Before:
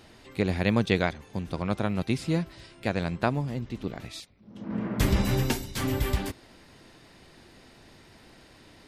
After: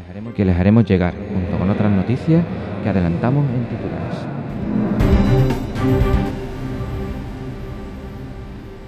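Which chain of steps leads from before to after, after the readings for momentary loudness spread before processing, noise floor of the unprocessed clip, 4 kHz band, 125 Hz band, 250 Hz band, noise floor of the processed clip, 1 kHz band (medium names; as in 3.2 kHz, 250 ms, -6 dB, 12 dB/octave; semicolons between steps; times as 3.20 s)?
14 LU, -55 dBFS, 0.0 dB, +12.5 dB, +12.0 dB, -33 dBFS, +7.5 dB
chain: low-pass 1.3 kHz 6 dB/octave; echo that smears into a reverb 929 ms, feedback 62%, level -10 dB; harmonic-percussive split harmonic +9 dB; reverse echo 504 ms -18 dB; trim +4.5 dB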